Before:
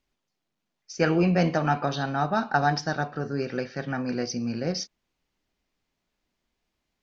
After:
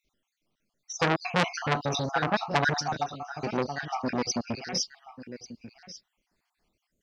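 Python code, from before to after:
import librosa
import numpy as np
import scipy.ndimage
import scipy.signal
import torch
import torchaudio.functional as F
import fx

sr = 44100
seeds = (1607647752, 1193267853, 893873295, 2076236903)

y = fx.spec_dropout(x, sr, seeds[0], share_pct=53)
y = fx.high_shelf(y, sr, hz=5500.0, db=8.5, at=(1.21, 2.0))
y = y + 10.0 ** (-16.5 / 20.0) * np.pad(y, (int(1141 * sr / 1000.0), 0))[:len(y)]
y = fx.transformer_sat(y, sr, knee_hz=2600.0)
y = F.gain(torch.from_numpy(y), 5.5).numpy()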